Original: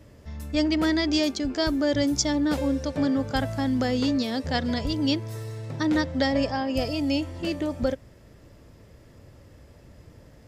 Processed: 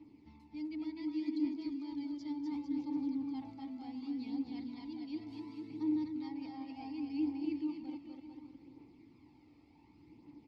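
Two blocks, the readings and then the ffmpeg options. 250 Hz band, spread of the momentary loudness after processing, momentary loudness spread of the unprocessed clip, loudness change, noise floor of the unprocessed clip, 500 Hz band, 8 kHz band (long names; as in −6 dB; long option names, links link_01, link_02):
−11.5 dB, 16 LU, 6 LU, −14.0 dB, −52 dBFS, −23.5 dB, below −35 dB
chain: -filter_complex "[0:a]equalizer=frequency=4400:width=2.8:gain=13,areverse,acompressor=threshold=-33dB:ratio=12,areverse,asplit=3[link_01][link_02][link_03];[link_01]bandpass=frequency=300:width_type=q:width=8,volume=0dB[link_04];[link_02]bandpass=frequency=870:width_type=q:width=8,volume=-6dB[link_05];[link_03]bandpass=frequency=2240:width_type=q:width=8,volume=-9dB[link_06];[link_04][link_05][link_06]amix=inputs=3:normalize=0,aecho=1:1:250|450|610|738|840.4:0.631|0.398|0.251|0.158|0.1,aphaser=in_gain=1:out_gain=1:delay=1.7:decay=0.4:speed=0.68:type=triangular,volume=1dB"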